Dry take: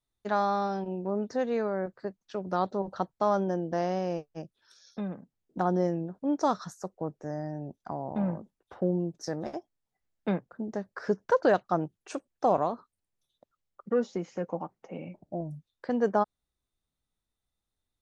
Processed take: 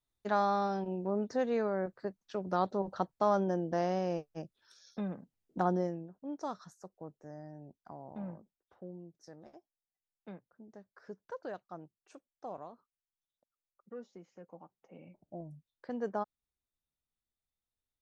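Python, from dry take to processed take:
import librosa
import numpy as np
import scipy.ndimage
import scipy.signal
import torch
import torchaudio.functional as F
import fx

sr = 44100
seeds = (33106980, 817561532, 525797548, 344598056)

y = fx.gain(x, sr, db=fx.line((5.67, -2.5), (6.09, -12.5), (8.32, -12.5), (8.82, -19.0), (14.46, -19.0), (15.36, -10.0)))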